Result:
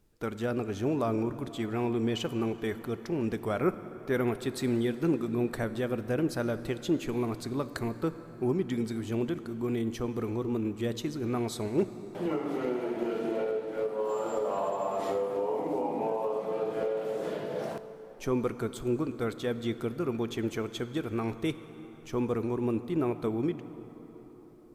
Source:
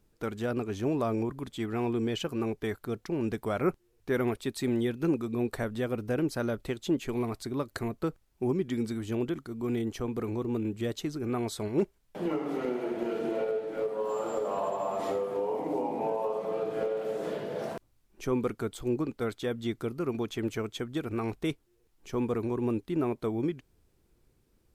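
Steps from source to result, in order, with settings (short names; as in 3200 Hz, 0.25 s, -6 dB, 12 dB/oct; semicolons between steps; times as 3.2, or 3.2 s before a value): plate-style reverb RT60 4.9 s, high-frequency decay 0.55×, DRR 11.5 dB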